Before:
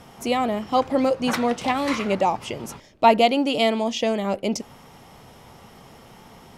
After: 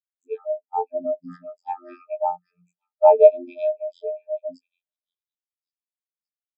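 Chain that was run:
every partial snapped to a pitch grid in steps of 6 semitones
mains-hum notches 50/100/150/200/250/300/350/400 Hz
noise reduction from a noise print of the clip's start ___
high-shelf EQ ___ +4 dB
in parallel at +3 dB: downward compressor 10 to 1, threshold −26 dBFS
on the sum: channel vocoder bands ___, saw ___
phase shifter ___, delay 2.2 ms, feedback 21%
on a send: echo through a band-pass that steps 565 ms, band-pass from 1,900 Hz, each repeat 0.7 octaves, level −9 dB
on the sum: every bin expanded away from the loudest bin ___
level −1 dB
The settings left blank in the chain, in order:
20 dB, 6,300 Hz, 32, 88 Hz, 0.8 Hz, 2.5 to 1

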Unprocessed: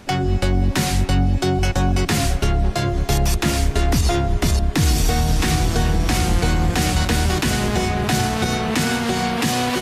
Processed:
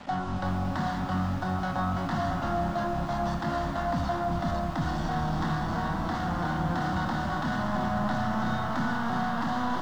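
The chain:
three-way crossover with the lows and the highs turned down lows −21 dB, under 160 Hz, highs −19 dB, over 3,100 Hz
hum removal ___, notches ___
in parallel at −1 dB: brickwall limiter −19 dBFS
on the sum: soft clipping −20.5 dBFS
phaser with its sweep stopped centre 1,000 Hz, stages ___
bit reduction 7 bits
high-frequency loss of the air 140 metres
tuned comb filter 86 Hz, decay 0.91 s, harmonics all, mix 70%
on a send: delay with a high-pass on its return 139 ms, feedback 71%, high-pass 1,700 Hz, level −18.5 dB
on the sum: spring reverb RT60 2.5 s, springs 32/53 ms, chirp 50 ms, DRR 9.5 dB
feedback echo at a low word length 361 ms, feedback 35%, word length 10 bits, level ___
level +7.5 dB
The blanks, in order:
136.2 Hz, 28, 4, −9 dB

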